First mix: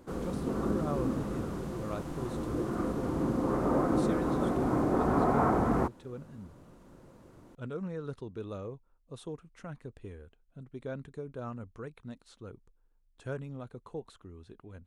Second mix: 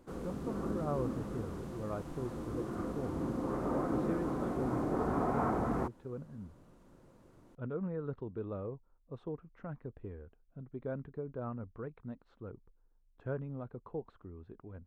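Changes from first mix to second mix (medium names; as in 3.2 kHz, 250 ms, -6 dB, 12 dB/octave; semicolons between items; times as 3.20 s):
speech: add low-pass 1.4 kHz; background -6.0 dB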